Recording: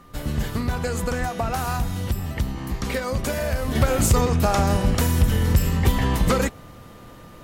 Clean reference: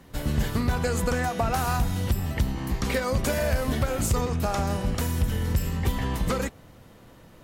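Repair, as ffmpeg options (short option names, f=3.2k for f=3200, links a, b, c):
-filter_complex "[0:a]bandreject=f=1.2k:w=30,asplit=3[a][b][c];[a]afade=t=out:st=1.19:d=0.02[d];[b]highpass=f=140:w=0.5412,highpass=f=140:w=1.3066,afade=t=in:st=1.19:d=0.02,afade=t=out:st=1.31:d=0.02[e];[c]afade=t=in:st=1.31:d=0.02[f];[d][e][f]amix=inputs=3:normalize=0,asplit=3[g][h][i];[g]afade=t=out:st=3.61:d=0.02[j];[h]highpass=f=140:w=0.5412,highpass=f=140:w=1.3066,afade=t=in:st=3.61:d=0.02,afade=t=out:st=3.73:d=0.02[k];[i]afade=t=in:st=3.73:d=0.02[l];[j][k][l]amix=inputs=3:normalize=0,asplit=3[m][n][o];[m]afade=t=out:st=4.72:d=0.02[p];[n]highpass=f=140:w=0.5412,highpass=f=140:w=1.3066,afade=t=in:st=4.72:d=0.02,afade=t=out:st=4.84:d=0.02[q];[o]afade=t=in:st=4.84:d=0.02[r];[p][q][r]amix=inputs=3:normalize=0,agate=range=-21dB:threshold=-35dB,asetnsamples=n=441:p=0,asendcmd='3.75 volume volume -6.5dB',volume=0dB"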